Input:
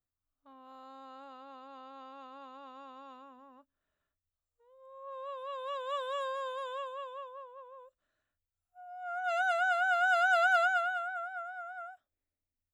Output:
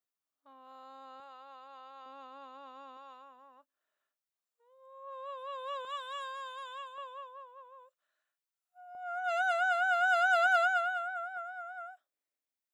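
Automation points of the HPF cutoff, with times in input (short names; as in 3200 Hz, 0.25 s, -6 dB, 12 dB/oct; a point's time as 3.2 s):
350 Hz
from 1.2 s 590 Hz
from 2.06 s 300 Hz
from 2.97 s 510 Hz
from 5.85 s 1100 Hz
from 6.98 s 690 Hz
from 8.95 s 350 Hz
from 10.46 s 200 Hz
from 11.37 s 430 Hz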